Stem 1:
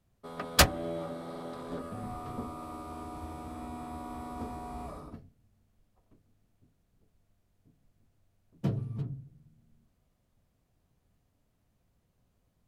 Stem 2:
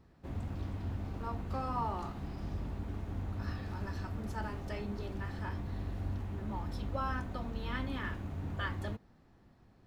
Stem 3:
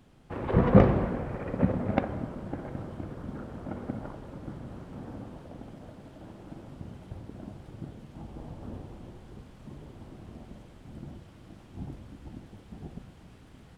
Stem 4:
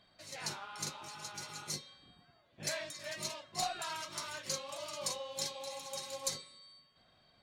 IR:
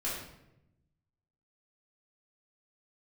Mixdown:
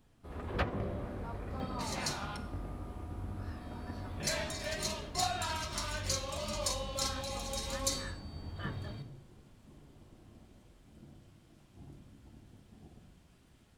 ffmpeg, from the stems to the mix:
-filter_complex "[0:a]equalizer=f=11k:t=o:w=0.23:g=10.5,acrossover=split=3000[a][b];[b]acompressor=threshold=-59dB:ratio=4:attack=1:release=60[c];[a][c]amix=inputs=2:normalize=0,volume=-11dB[d];[1:a]equalizer=f=61:t=o:w=0.77:g=3.5,flanger=delay=20:depth=6.9:speed=1.5,volume=-4dB[e];[2:a]highshelf=f=3.3k:g=10.5,alimiter=limit=-15dB:level=0:latency=1:release=438,volume=-16dB,asplit=2[f][g];[g]volume=-6dB[h];[3:a]agate=range=-14dB:threshold=-54dB:ratio=16:detection=peak,acompressor=mode=upward:threshold=-40dB:ratio=2.5,adelay=1600,volume=1dB,asplit=3[i][j][k];[i]atrim=end=2.37,asetpts=PTS-STARTPTS,afade=t=out:st=2.366:d=0.004:c=hsin[l];[j]atrim=start=2.37:end=3.61,asetpts=PTS-STARTPTS,volume=0[m];[k]atrim=start=3.61,asetpts=PTS-STARTPTS,afade=t=in:d=0.004:c=hsin[n];[l][m][n]concat=n=3:v=0:a=1,asplit=2[o][p];[p]volume=-9.5dB[q];[4:a]atrim=start_sample=2205[r];[h][q]amix=inputs=2:normalize=0[s];[s][r]afir=irnorm=-1:irlink=0[t];[d][e][f][o][t]amix=inputs=5:normalize=0"

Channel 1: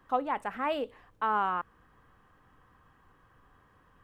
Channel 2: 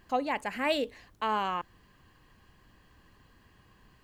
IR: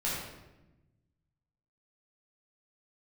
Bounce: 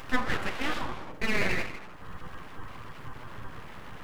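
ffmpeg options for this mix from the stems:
-filter_complex "[0:a]acompressor=mode=upward:threshold=-32dB:ratio=2.5,aeval=exprs='val(0)+0.00224*(sin(2*PI*60*n/s)+sin(2*PI*2*60*n/s)/2+sin(2*PI*3*60*n/s)/3+sin(2*PI*4*60*n/s)/4+sin(2*PI*5*60*n/s)/5)':c=same,volume=2dB,asplit=3[a][b][c];[b]volume=-5.5dB[d];[1:a]volume=-1,volume=-0.5dB[e];[c]apad=whole_len=177956[f];[e][f]sidechaincompress=threshold=-30dB:ratio=8:attack=16:release=221[g];[2:a]atrim=start_sample=2205[h];[d][h]afir=irnorm=-1:irlink=0[i];[a][g][i]amix=inputs=3:normalize=0,flanger=delay=7.6:depth=4.2:regen=-1:speed=0.66:shape=sinusoidal,aeval=exprs='abs(val(0))':c=same"

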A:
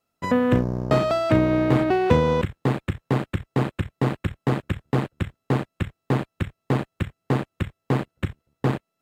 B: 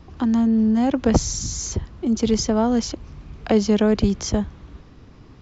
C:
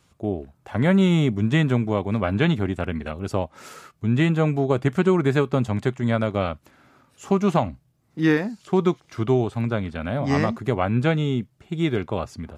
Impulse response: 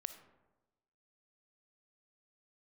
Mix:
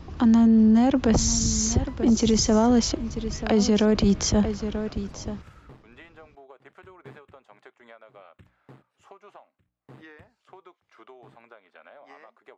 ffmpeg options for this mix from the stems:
-filter_complex "[0:a]bandreject=f=60:t=h:w=6,bandreject=f=120:t=h:w=6,bandreject=f=180:t=h:w=6,bandreject=f=240:t=h:w=6,bandreject=f=300:t=h:w=6,aeval=exprs='val(0)*pow(10,-30*(0.5-0.5*cos(2*PI*0.67*n/s))/20)':c=same,adelay=1650,volume=-10.5dB,asplit=2[a][b];[b]volume=-13.5dB[c];[1:a]volume=3dB,asplit=3[d][e][f];[e]volume=-15dB[g];[2:a]highpass=560,highshelf=f=4.3k:g=-9.5,acontrast=57,adelay=1800,volume=-17.5dB[h];[f]apad=whole_len=470166[i];[a][i]sidechaingate=range=-44dB:threshold=-32dB:ratio=16:detection=peak[j];[j][h]amix=inputs=2:normalize=0,bass=f=250:g=-14,treble=f=4k:g=-6,acompressor=threshold=-45dB:ratio=12,volume=0dB[k];[c][g]amix=inputs=2:normalize=0,aecho=0:1:936:1[l];[d][k][l]amix=inputs=3:normalize=0,alimiter=limit=-12dB:level=0:latency=1:release=24"

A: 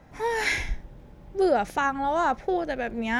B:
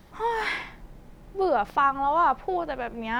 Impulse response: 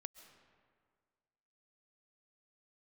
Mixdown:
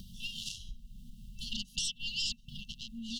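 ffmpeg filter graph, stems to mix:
-filter_complex "[0:a]volume=-17dB[a];[1:a]equalizer=f=720:t=o:w=1.6:g=3.5,aeval=exprs='0.355*(cos(1*acos(clip(val(0)/0.355,-1,1)))-cos(1*PI/2))+0.0316*(cos(3*acos(clip(val(0)/0.355,-1,1)))-cos(3*PI/2))+0.0178*(cos(4*acos(clip(val(0)/0.355,-1,1)))-cos(4*PI/2))+0.0251*(cos(5*acos(clip(val(0)/0.355,-1,1)))-cos(5*PI/2))+0.0708*(cos(7*acos(clip(val(0)/0.355,-1,1)))-cos(7*PI/2))':c=same,adelay=1.1,volume=-2dB[b];[a][b]amix=inputs=2:normalize=0,afftfilt=real='re*(1-between(b*sr/4096,240,2700))':imag='im*(1-between(b*sr/4096,240,2700))':win_size=4096:overlap=0.75,equalizer=f=95:t=o:w=2:g=-4,acompressor=mode=upward:threshold=-34dB:ratio=2.5"

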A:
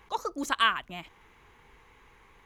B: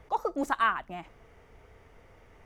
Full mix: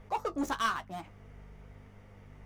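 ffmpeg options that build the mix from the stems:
-filter_complex "[0:a]aeval=exprs='sgn(val(0))*max(abs(val(0))-0.01,0)':c=same,volume=1dB[a];[1:a]alimiter=limit=-19.5dB:level=0:latency=1:release=401,aeval=exprs='val(0)+0.00398*(sin(2*PI*50*n/s)+sin(2*PI*2*50*n/s)/2+sin(2*PI*3*50*n/s)/3+sin(2*PI*4*50*n/s)/4+sin(2*PI*5*50*n/s)/5)':c=same,volume=2dB[b];[a][b]amix=inputs=2:normalize=0,asoftclip=type=tanh:threshold=-20.5dB,flanger=delay=9.6:depth=4.5:regen=-39:speed=0.98:shape=sinusoidal"

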